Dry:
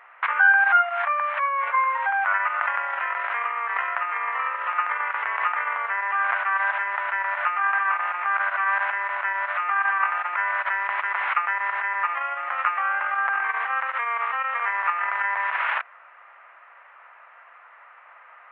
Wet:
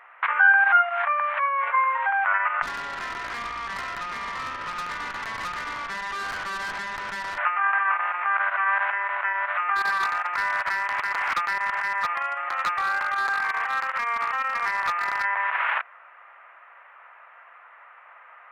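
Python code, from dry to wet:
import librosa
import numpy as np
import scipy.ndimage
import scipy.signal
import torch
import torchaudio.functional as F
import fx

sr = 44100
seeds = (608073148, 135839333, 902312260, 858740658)

y = fx.tube_stage(x, sr, drive_db=28.0, bias=0.6, at=(2.62, 7.38))
y = fx.clip_hard(y, sr, threshold_db=-20.0, at=(9.75, 15.23), fade=0.02)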